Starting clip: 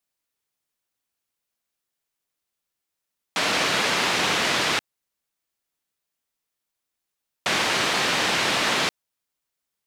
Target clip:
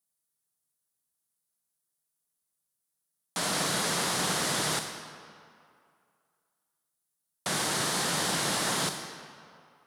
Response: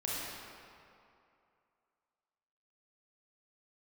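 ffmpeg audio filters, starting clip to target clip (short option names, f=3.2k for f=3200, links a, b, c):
-filter_complex "[0:a]equalizer=f=160:t=o:w=0.67:g=9,equalizer=f=2.5k:t=o:w=0.67:g=-9,equalizer=f=10k:t=o:w=0.67:g=10,asplit=2[a][b];[1:a]atrim=start_sample=2205,asetrate=48510,aresample=44100,highshelf=f=4.8k:g=11[c];[b][c]afir=irnorm=-1:irlink=0,volume=-9dB[d];[a][d]amix=inputs=2:normalize=0,volume=-9dB"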